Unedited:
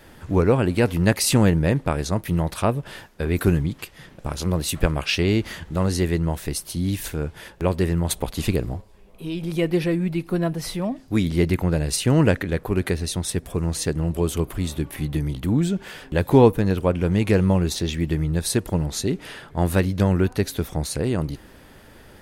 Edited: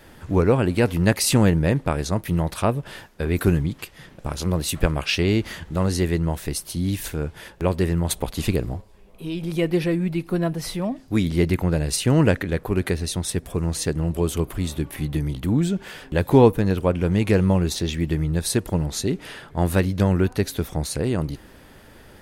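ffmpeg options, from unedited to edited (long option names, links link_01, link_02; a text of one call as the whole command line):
ffmpeg -i in.wav -af anull out.wav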